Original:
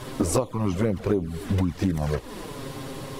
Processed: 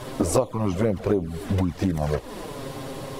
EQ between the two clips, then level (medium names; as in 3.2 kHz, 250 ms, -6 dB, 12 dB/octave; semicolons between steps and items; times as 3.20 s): peaking EQ 640 Hz +5.5 dB 0.82 oct; 0.0 dB